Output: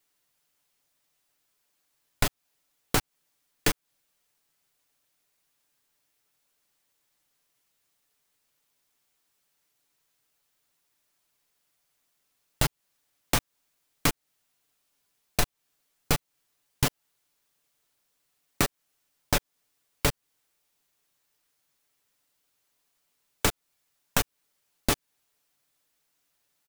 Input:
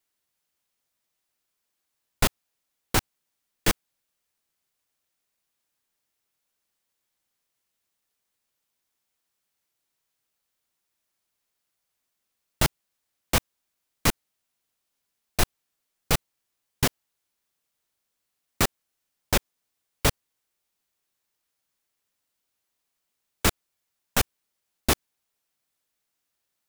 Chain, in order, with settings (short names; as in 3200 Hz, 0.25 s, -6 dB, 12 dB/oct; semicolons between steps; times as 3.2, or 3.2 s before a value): comb 6.9 ms, depth 44%; compressor 5:1, threshold -26 dBFS, peak gain reduction 11.5 dB; gain +4.5 dB